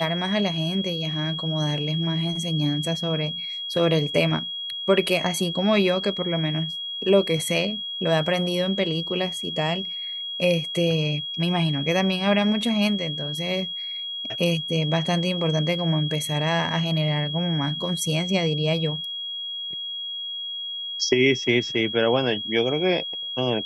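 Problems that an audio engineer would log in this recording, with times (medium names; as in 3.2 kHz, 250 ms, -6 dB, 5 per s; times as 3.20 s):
whine 3.3 kHz -29 dBFS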